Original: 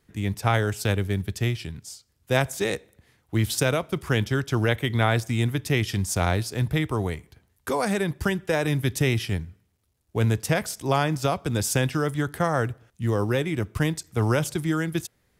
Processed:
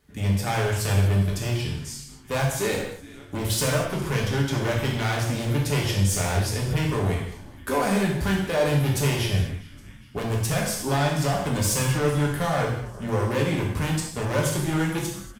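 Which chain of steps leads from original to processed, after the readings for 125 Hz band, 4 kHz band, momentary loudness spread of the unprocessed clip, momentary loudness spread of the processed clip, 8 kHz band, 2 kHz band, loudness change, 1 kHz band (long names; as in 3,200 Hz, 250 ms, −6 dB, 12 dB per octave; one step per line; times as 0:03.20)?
+1.5 dB, +2.0 dB, 8 LU, 8 LU, +3.5 dB, −1.0 dB, +1.0 dB, +0.5 dB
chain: echo with shifted repeats 408 ms, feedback 55%, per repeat −120 Hz, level −23.5 dB
hard clipping −24 dBFS, distortion −7 dB
reverb whose tail is shaped and stops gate 270 ms falling, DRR −2.5 dB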